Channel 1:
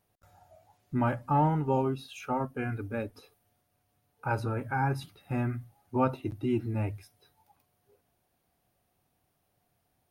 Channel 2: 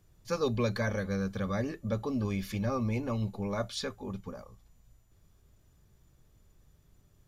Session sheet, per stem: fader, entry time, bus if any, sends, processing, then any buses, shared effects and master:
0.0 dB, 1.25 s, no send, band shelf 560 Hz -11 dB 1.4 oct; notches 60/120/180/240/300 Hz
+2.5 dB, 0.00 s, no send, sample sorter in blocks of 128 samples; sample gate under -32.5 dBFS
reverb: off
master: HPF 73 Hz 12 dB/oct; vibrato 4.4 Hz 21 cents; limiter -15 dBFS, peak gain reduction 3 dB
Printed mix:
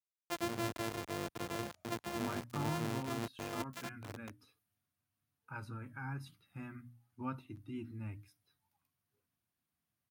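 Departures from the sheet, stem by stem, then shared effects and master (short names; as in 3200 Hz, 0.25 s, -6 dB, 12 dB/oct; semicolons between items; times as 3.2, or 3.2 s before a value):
stem 1 0.0 dB -> -11.5 dB; stem 2 +2.5 dB -> -8.0 dB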